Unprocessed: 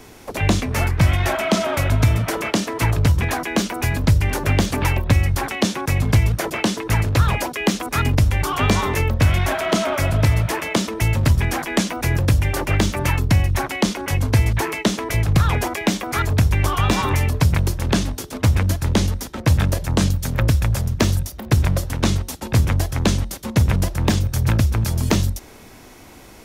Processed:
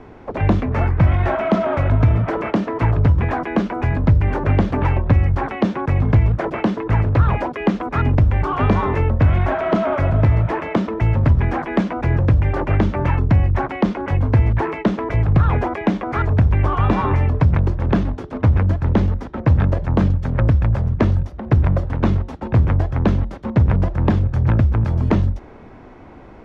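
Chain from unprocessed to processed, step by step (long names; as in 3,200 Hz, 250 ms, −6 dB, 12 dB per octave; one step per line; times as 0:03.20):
low-pass filter 1,400 Hz 12 dB per octave
in parallel at −6 dB: soft clipping −18 dBFS, distortion −10 dB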